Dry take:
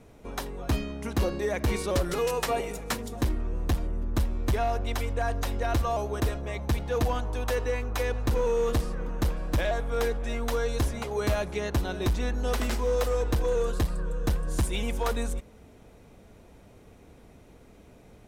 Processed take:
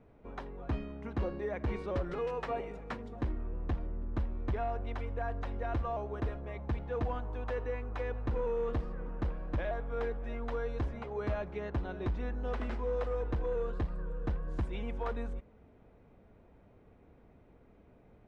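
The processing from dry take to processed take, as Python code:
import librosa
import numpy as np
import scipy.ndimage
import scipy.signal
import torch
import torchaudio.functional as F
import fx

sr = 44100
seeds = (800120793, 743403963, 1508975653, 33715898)

y = scipy.signal.sosfilt(scipy.signal.butter(2, 2000.0, 'lowpass', fs=sr, output='sos'), x)
y = y * 10.0 ** (-7.5 / 20.0)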